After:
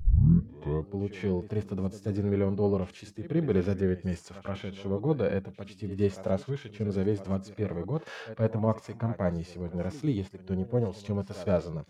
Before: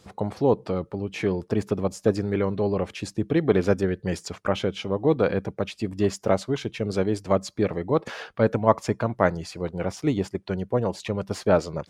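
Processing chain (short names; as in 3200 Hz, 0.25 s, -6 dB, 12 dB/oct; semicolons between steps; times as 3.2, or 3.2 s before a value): tape start at the beginning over 0.90 s; reverse echo 0.131 s -20.5 dB; harmonic-percussive split percussive -17 dB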